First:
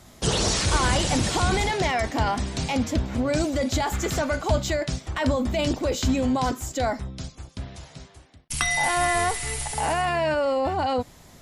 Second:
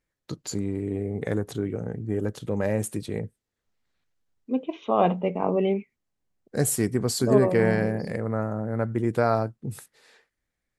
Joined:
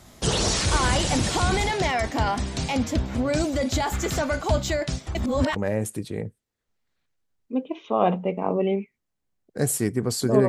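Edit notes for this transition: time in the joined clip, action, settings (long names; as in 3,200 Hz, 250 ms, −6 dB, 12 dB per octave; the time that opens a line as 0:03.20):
first
0:05.15–0:05.56: reverse
0:05.56: continue with second from 0:02.54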